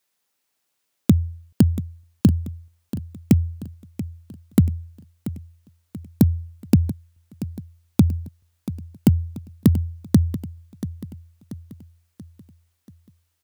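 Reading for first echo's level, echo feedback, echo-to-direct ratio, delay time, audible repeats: −14.0 dB, 48%, −13.0 dB, 684 ms, 4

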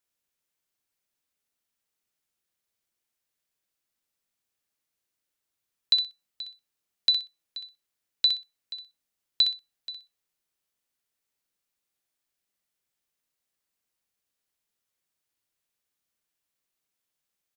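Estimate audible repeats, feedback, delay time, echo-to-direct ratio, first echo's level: 2, 18%, 63 ms, −7.0 dB, −7.0 dB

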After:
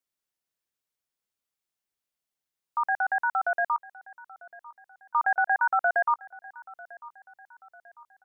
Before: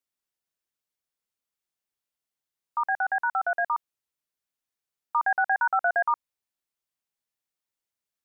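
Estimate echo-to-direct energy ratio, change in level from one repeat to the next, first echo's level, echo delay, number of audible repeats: −20.0 dB, −7.0 dB, −21.0 dB, 946 ms, 2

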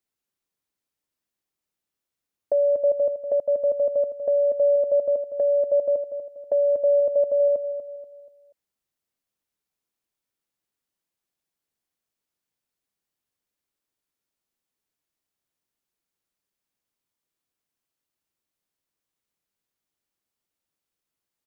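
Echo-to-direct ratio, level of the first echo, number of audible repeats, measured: −9.5 dB, −10.0 dB, 3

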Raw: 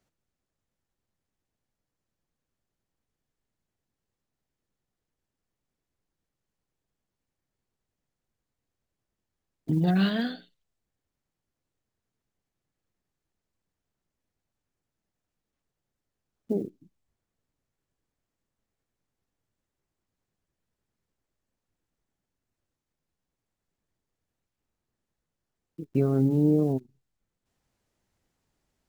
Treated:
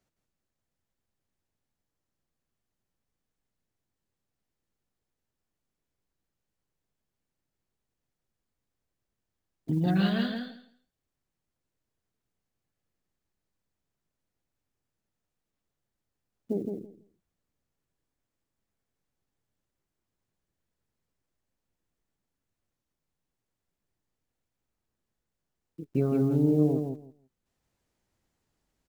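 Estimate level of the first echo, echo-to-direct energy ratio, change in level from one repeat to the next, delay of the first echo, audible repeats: −5.0 dB, −5.0 dB, −16.0 dB, 165 ms, 2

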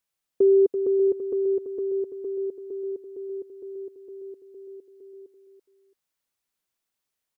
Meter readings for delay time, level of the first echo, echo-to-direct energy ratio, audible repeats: 335 ms, −9.0 dB, −8.5 dB, 2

